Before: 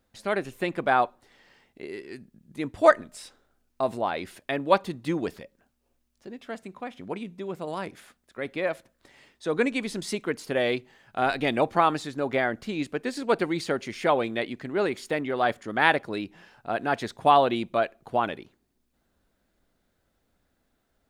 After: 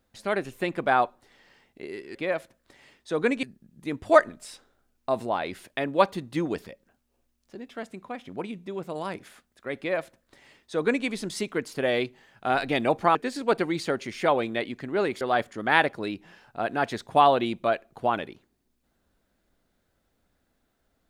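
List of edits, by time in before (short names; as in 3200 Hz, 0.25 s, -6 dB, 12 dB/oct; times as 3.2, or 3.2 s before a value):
8.5–9.78 copy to 2.15
11.87–12.96 cut
15.02–15.31 cut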